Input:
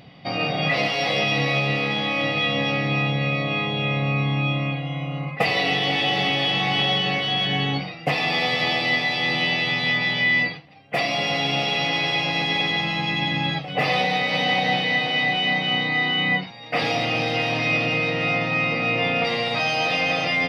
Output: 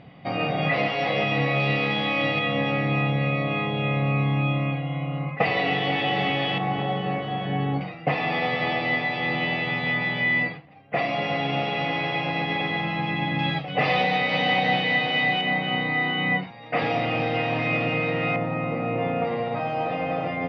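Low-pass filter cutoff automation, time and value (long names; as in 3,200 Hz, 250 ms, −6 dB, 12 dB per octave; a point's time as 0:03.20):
2,300 Hz
from 0:01.60 3,600 Hz
from 0:02.39 2,300 Hz
from 0:06.58 1,200 Hz
from 0:07.81 2,000 Hz
from 0:13.39 3,200 Hz
from 0:15.41 2,100 Hz
from 0:18.36 1,100 Hz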